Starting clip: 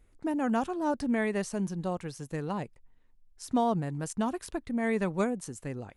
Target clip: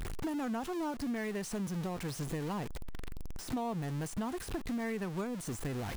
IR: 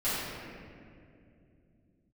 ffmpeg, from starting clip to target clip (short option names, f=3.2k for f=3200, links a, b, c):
-af "aeval=exprs='val(0)+0.5*0.0266*sgn(val(0))':c=same,acompressor=threshold=-34dB:ratio=5,equalizer=f=570:t=o:w=0.21:g=-5.5,deesser=0.85"